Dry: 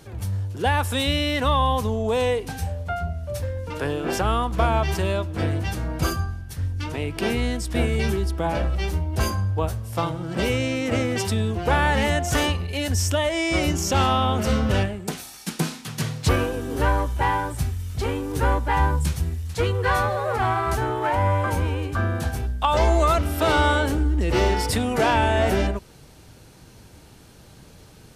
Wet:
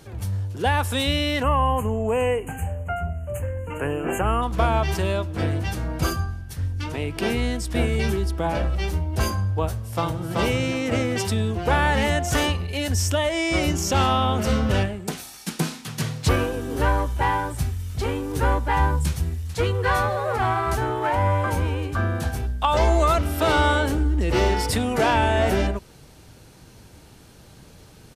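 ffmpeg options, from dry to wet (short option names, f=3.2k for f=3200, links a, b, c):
-filter_complex "[0:a]asplit=3[a][b][c];[a]afade=t=out:st=1.42:d=0.02[d];[b]asuperstop=centerf=4500:order=20:qfactor=1.3,afade=t=in:st=1.42:d=0.02,afade=t=out:st=4.41:d=0.02[e];[c]afade=t=in:st=4.41:d=0.02[f];[d][e][f]amix=inputs=3:normalize=0,asplit=2[g][h];[h]afade=t=in:st=9.7:d=0.01,afade=t=out:st=10.36:d=0.01,aecho=0:1:380|760|1140:0.749894|0.112484|0.0168726[i];[g][i]amix=inputs=2:normalize=0"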